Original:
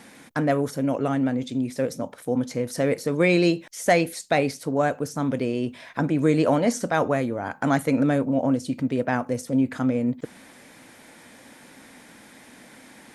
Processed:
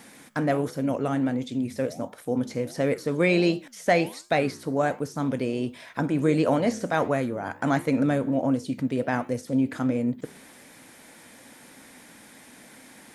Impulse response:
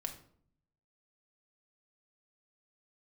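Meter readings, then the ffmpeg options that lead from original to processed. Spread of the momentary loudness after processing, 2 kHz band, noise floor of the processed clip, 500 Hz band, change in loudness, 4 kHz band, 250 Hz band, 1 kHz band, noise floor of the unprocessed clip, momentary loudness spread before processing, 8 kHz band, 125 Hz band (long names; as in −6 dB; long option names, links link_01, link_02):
8 LU, −1.5 dB, −50 dBFS, −2.0 dB, −2.0 dB, −2.0 dB, −2.0 dB, −2.0 dB, −50 dBFS, 8 LU, −6.0 dB, −2.0 dB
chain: -filter_complex "[0:a]highshelf=frequency=7700:gain=7.5,flanger=delay=7:depth=9.4:regen=-86:speed=1.4:shape=sinusoidal,acrossover=split=4800[link_01][link_02];[link_02]acompressor=threshold=-49dB:ratio=4:attack=1:release=60[link_03];[link_01][link_03]amix=inputs=2:normalize=0,volume=2.5dB"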